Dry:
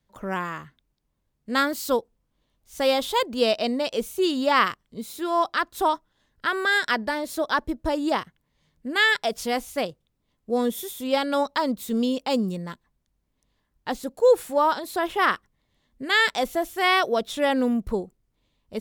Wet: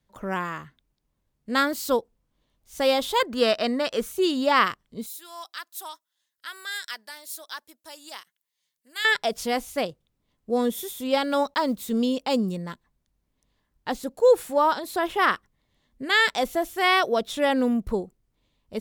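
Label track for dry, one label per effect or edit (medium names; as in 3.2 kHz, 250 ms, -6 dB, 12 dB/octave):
3.200000	4.120000	high-order bell 1.5 kHz +8.5 dB 1 oct
5.060000	9.050000	differentiator
11.240000	11.880000	block-companded coder 7-bit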